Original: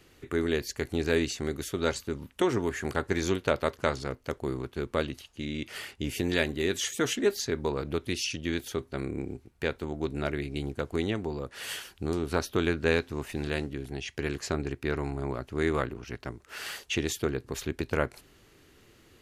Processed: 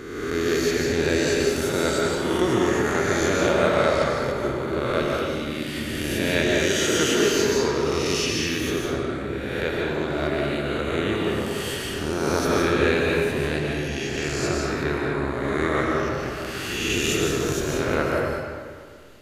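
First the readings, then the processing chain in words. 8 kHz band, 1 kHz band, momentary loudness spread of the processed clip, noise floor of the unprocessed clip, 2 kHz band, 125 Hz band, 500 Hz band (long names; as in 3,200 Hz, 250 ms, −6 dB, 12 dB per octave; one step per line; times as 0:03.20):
+9.0 dB, +9.5 dB, 8 LU, −60 dBFS, +9.0 dB, +6.0 dB, +8.5 dB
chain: peak hold with a rise ahead of every peak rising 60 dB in 1.52 s
comb and all-pass reverb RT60 1.9 s, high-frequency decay 0.7×, pre-delay 105 ms, DRR −2 dB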